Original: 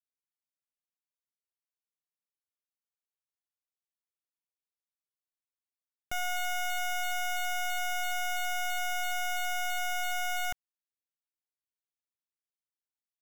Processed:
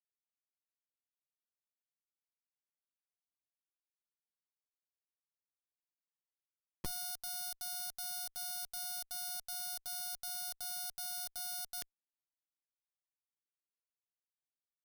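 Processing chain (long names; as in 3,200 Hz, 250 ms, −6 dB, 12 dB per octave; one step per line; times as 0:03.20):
brick-wall band-stop 220–3,200 Hz
comparator with hysteresis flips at −53 dBFS
tempo change 0.89×
level +6 dB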